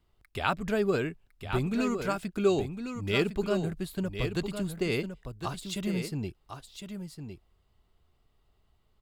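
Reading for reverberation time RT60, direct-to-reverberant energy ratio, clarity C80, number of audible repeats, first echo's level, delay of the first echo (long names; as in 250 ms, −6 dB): no reverb audible, no reverb audible, no reverb audible, 1, −8.0 dB, 1,057 ms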